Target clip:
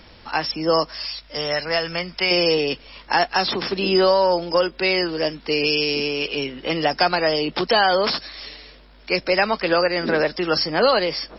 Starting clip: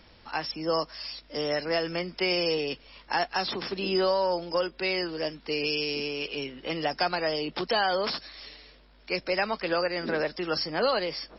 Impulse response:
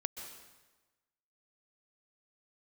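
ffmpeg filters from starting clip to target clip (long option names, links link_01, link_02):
-filter_complex "[0:a]asettb=1/sr,asplit=3[link_01][link_02][link_03];[link_01]atrim=end=1.054[link_04];[link_02]atrim=start=1.05:end=2.31,asetpts=PTS-STARTPTS,afade=type=in:duration=0.004:curve=qsin,afade=type=out:start_time=1.256:duration=0.004:curve=qsin,equalizer=frequency=320:width=0.93:gain=-10[link_05];[link_03]atrim=start=2.306[link_06];[link_04][link_05]acrossfade=duration=0.004:curve1=hsin:curve2=qsin[link_07];[link_07][link_06]acrossfade=duration=0.004:curve1=qsin:curve2=hsin,volume=8.5dB"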